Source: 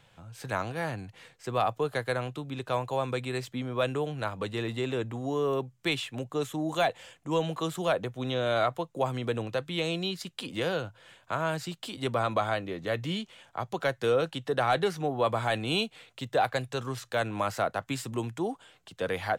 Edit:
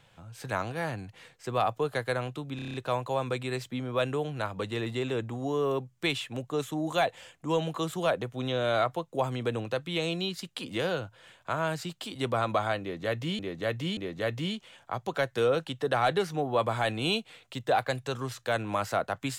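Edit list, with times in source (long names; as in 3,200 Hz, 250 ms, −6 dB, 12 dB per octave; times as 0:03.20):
0:02.56: stutter 0.03 s, 7 plays
0:12.63–0:13.21: repeat, 3 plays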